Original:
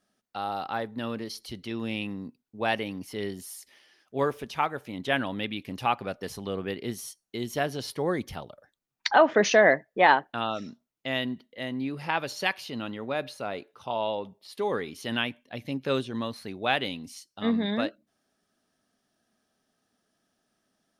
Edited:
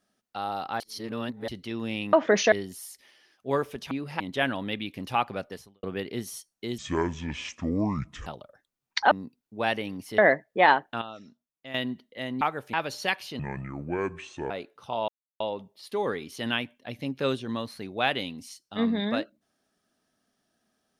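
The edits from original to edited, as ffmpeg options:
ffmpeg -i in.wav -filter_complex "[0:a]asplit=19[link_01][link_02][link_03][link_04][link_05][link_06][link_07][link_08][link_09][link_10][link_11][link_12][link_13][link_14][link_15][link_16][link_17][link_18][link_19];[link_01]atrim=end=0.802[link_20];[link_02]atrim=start=0.798:end=1.482,asetpts=PTS-STARTPTS,areverse[link_21];[link_03]atrim=start=1.478:end=2.132[link_22];[link_04]atrim=start=9.198:end=9.592[link_23];[link_05]atrim=start=3.198:end=4.592[link_24];[link_06]atrim=start=11.818:end=12.112[link_25];[link_07]atrim=start=4.908:end=6.54,asetpts=PTS-STARTPTS,afade=type=out:start_time=1.262:duration=0.37:curve=qua[link_26];[link_08]atrim=start=6.54:end=7.494,asetpts=PTS-STARTPTS,afade=type=in:duration=0.004:curve=hsin[link_27];[link_09]atrim=start=7.49:end=8.35,asetpts=PTS-STARTPTS,asetrate=25578,aresample=44100[link_28];[link_10]atrim=start=8.346:end=9.202[link_29];[link_11]atrim=start=2.128:end=3.202[link_30];[link_12]atrim=start=9.588:end=10.422[link_31];[link_13]atrim=start=10.418:end=11.152,asetpts=PTS-STARTPTS,volume=-10.5dB[link_32];[link_14]atrim=start=11.148:end=11.822[link_33];[link_15]atrim=start=4.588:end=4.912[link_34];[link_16]atrim=start=12.108:end=12.774[link_35];[link_17]atrim=start=12.77:end=13.48,asetpts=PTS-STARTPTS,asetrate=28224,aresample=44100,atrim=end_sample=48923,asetpts=PTS-STARTPTS[link_36];[link_18]atrim=start=13.476:end=14.06,asetpts=PTS-STARTPTS,afade=type=out:start_time=0.58:duration=0.004:curve=hsin,apad=pad_dur=0.32[link_37];[link_19]atrim=start=14.06,asetpts=PTS-STARTPTS,afade=type=in:duration=0.004:curve=hsin[link_38];[link_20][link_21]acrossfade=duration=0.004:curve1=hsin:curve2=hsin[link_39];[link_39][link_22]acrossfade=duration=0.004:curve1=hsin:curve2=hsin[link_40];[link_40][link_23]acrossfade=duration=0.004:curve1=hsin:curve2=hsin[link_41];[link_41][link_24]acrossfade=duration=0.004:curve1=hsin:curve2=hsin[link_42];[link_42][link_25]acrossfade=duration=0.004:curve1=hsin:curve2=hsin[link_43];[link_26][link_27]concat=n=2:v=0:a=1[link_44];[link_43][link_44]acrossfade=duration=0.004:curve1=hsin:curve2=hsin[link_45];[link_45][link_28]acrossfade=duration=0.004:curve1=hsin:curve2=hsin[link_46];[link_46][link_29]acrossfade=duration=0.004:curve1=hsin:curve2=hsin[link_47];[link_47][link_30]acrossfade=duration=0.004:curve1=hsin:curve2=hsin[link_48];[link_48][link_31]acrossfade=duration=0.004:curve1=hsin:curve2=hsin[link_49];[link_49][link_32]acrossfade=duration=0.004:curve1=hsin:curve2=hsin[link_50];[link_50][link_33]acrossfade=duration=0.004:curve1=hsin:curve2=hsin[link_51];[link_51][link_34]acrossfade=duration=0.004:curve1=hsin:curve2=hsin[link_52];[link_52][link_35]acrossfade=duration=0.004:curve1=hsin:curve2=hsin[link_53];[link_53][link_36]acrossfade=duration=0.004:curve1=hsin:curve2=hsin[link_54];[link_37][link_38]concat=n=2:v=0:a=1[link_55];[link_54][link_55]acrossfade=duration=0.004:curve1=hsin:curve2=hsin" out.wav

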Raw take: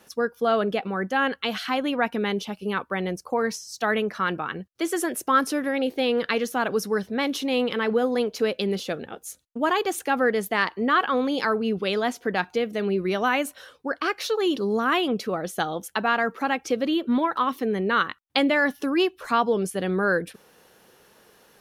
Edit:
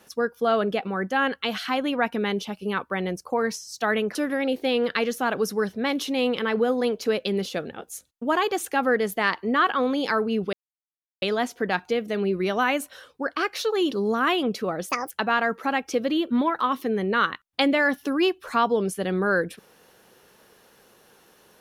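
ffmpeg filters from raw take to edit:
ffmpeg -i in.wav -filter_complex "[0:a]asplit=5[link_01][link_02][link_03][link_04][link_05];[link_01]atrim=end=4.152[link_06];[link_02]atrim=start=5.488:end=11.87,asetpts=PTS-STARTPTS,afade=type=out:start_time=6.378:duration=0.004:curve=hsin,apad=pad_dur=0.69[link_07];[link_03]atrim=start=11.87:end=15.544,asetpts=PTS-STARTPTS,afade=type=in:duration=0.004:curve=hsin[link_08];[link_04]atrim=start=15.54:end=15.87,asetpts=PTS-STARTPTS,asetrate=68355,aresample=44100,atrim=end_sample=9389,asetpts=PTS-STARTPTS[link_09];[link_05]atrim=start=15.866[link_10];[link_07][link_08]concat=n=2:v=0:a=1[link_11];[link_06][link_11]acrossfade=duration=0.004:curve1=hsin:curve2=hsin[link_12];[link_12][link_09]acrossfade=duration=0.004:curve1=hsin:curve2=hsin[link_13];[link_13][link_10]acrossfade=duration=0.004:curve1=hsin:curve2=hsin" out.wav

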